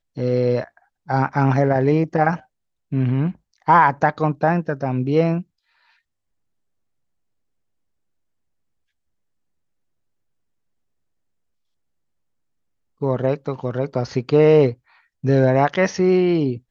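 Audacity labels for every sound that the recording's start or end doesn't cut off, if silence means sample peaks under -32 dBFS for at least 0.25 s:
1.090000	2.370000	sound
2.920000	3.310000	sound
3.680000	5.420000	sound
13.020000	14.730000	sound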